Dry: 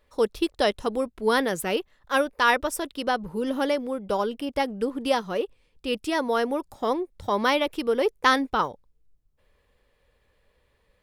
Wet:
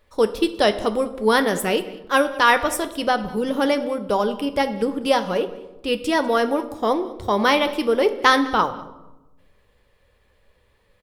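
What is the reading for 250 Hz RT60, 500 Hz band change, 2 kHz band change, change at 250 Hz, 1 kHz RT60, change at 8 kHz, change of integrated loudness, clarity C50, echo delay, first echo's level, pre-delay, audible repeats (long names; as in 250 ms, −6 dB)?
1.3 s, +5.0 dB, +5.0 dB, +5.0 dB, 0.95 s, +5.0 dB, +5.0 dB, 13.0 dB, 197 ms, −21.0 dB, 9 ms, 1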